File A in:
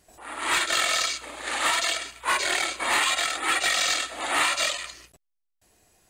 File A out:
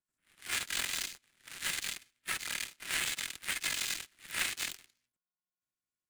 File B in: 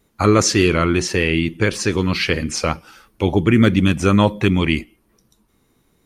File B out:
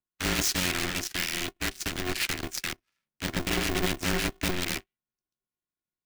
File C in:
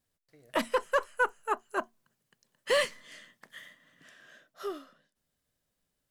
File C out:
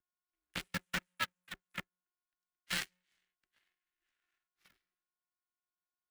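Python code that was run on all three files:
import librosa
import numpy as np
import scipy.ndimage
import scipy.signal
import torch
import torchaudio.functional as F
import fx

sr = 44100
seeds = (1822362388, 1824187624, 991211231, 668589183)

y = 10.0 ** (-14.0 / 20.0) * (np.abs((x / 10.0 ** (-14.0 / 20.0) + 3.0) % 4.0 - 2.0) - 1.0)
y = y + 10.0 ** (-33.0 / 20.0) * np.sin(2.0 * np.pi * 420.0 * np.arange(len(y)) / sr)
y = fx.power_curve(y, sr, exponent=3.0)
y = scipy.signal.sosfilt(scipy.signal.cheby1(5, 1.0, [210.0, 1500.0], 'bandstop', fs=sr, output='sos'), y)
y = y * np.sign(np.sin(2.0 * np.pi * 180.0 * np.arange(len(y)) / sr))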